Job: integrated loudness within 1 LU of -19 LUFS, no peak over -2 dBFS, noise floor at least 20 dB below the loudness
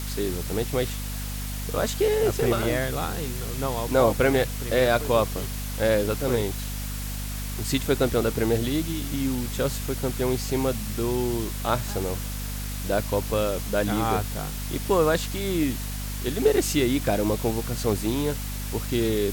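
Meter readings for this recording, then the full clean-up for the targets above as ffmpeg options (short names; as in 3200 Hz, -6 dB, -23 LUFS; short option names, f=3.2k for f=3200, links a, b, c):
hum 50 Hz; harmonics up to 250 Hz; hum level -30 dBFS; noise floor -31 dBFS; noise floor target -46 dBFS; loudness -26.0 LUFS; peak -8.0 dBFS; loudness target -19.0 LUFS
-> -af "bandreject=f=50:t=h:w=4,bandreject=f=100:t=h:w=4,bandreject=f=150:t=h:w=4,bandreject=f=200:t=h:w=4,bandreject=f=250:t=h:w=4"
-af "afftdn=nr=15:nf=-31"
-af "volume=7dB,alimiter=limit=-2dB:level=0:latency=1"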